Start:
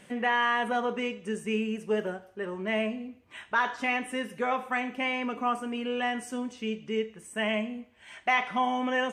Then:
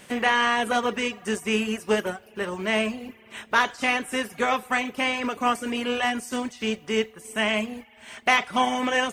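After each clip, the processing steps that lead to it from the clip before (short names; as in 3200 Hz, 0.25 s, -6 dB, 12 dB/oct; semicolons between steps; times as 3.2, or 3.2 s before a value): spectral contrast lowered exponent 0.69; spring tank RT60 3.6 s, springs 50 ms, chirp 30 ms, DRR 17 dB; reverb removal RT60 0.55 s; gain +5.5 dB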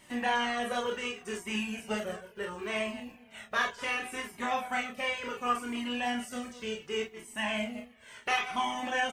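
reverse delay 0.12 s, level -12.5 dB; on a send: early reflections 29 ms -4 dB, 46 ms -7 dB; on the sum: cascading flanger falling 0.69 Hz; gain -5.5 dB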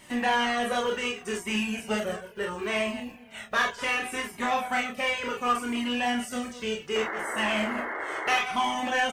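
painted sound noise, 6.95–8.39, 290–2200 Hz -39 dBFS; in parallel at -5 dB: overloaded stage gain 31.5 dB; on the sum: gain +2 dB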